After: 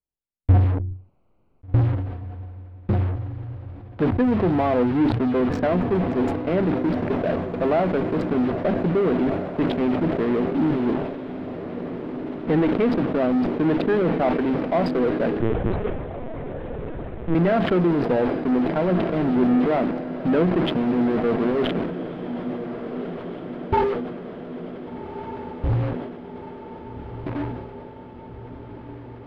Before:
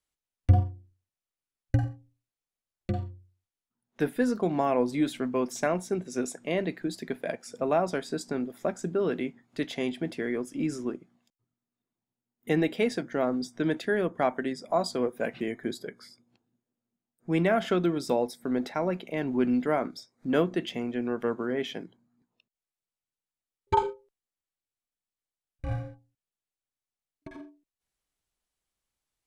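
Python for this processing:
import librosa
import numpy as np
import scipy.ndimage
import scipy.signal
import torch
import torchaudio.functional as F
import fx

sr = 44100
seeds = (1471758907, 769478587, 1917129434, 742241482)

p1 = fx.wiener(x, sr, points=25)
p2 = fx.low_shelf(p1, sr, hz=330.0, db=3.0)
p3 = fx.leveller(p2, sr, passes=1)
p4 = fx.fuzz(p3, sr, gain_db=49.0, gate_db=-42.0)
p5 = p3 + (p4 * librosa.db_to_amplitude(-7.5))
p6 = fx.air_absorb(p5, sr, metres=410.0)
p7 = p6 + fx.echo_diffused(p6, sr, ms=1550, feedback_pct=67, wet_db=-11.0, dry=0)
p8 = fx.lpc_vocoder(p7, sr, seeds[0], excitation='pitch_kept', order=10, at=(15.4, 17.35))
p9 = fx.sustainer(p8, sr, db_per_s=45.0)
y = p9 * librosa.db_to_amplitude(-3.0)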